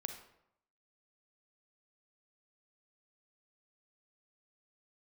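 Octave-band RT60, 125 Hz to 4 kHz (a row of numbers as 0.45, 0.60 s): 0.80, 0.80, 0.75, 0.80, 0.65, 0.50 s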